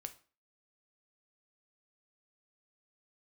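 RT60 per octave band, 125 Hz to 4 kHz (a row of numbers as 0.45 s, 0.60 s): 0.35 s, 0.40 s, 0.40 s, 0.40 s, 0.35 s, 0.35 s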